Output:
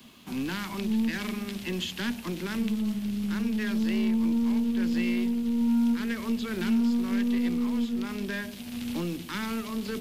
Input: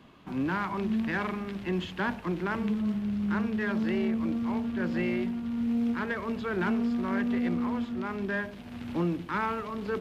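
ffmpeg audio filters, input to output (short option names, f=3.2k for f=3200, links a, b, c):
-filter_complex "[0:a]equalizer=f=230:w=7.6:g=12,aeval=exprs='0.282*(cos(1*acos(clip(val(0)/0.282,-1,1)))-cos(1*PI/2))+0.0141*(cos(6*acos(clip(val(0)/0.282,-1,1)))-cos(6*PI/2))':c=same,acrossover=split=300|420|1900[a][b][c][d];[c]alimiter=level_in=7.5dB:limit=-24dB:level=0:latency=1:release=192,volume=-7.5dB[e];[d]crystalizer=i=8:c=0[f];[a][b][e][f]amix=inputs=4:normalize=0,acompressor=threshold=-28dB:ratio=1.5,volume=-2dB"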